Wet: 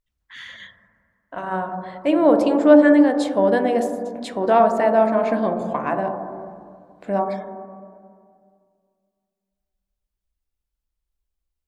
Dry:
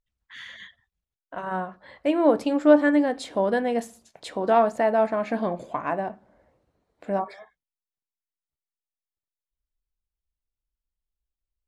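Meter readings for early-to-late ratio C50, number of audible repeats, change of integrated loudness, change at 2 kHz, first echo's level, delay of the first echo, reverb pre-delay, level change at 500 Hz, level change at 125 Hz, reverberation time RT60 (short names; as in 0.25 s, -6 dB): 7.5 dB, none, +5.0 dB, +3.5 dB, none, none, 28 ms, +5.5 dB, +5.5 dB, 2.1 s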